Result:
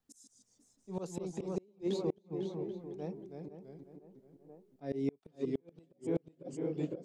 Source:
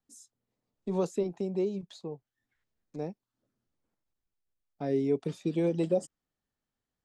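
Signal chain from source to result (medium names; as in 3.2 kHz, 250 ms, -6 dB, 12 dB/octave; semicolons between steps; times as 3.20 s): 5.31–5.72 s: treble shelf 7.6 kHz -12 dB; tape echo 500 ms, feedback 48%, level -6 dB, low-pass 1.6 kHz; slow attack 215 ms; ever faster or slower copies 143 ms, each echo -1 st, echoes 2, each echo -6 dB; inverted gate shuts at -24 dBFS, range -36 dB; trim +2 dB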